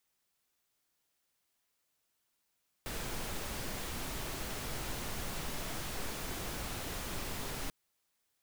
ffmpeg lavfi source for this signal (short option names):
-f lavfi -i "anoisesrc=c=pink:a=0.0575:d=4.84:r=44100:seed=1"